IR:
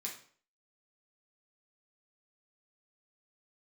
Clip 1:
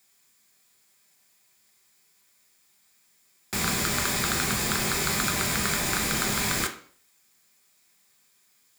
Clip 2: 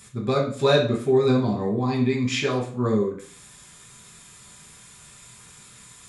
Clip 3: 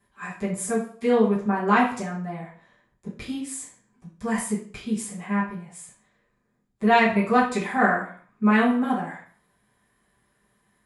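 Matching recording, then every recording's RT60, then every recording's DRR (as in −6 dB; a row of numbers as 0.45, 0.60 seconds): 2; 0.50, 0.50, 0.50 seconds; 3.0, −3.5, −8.0 decibels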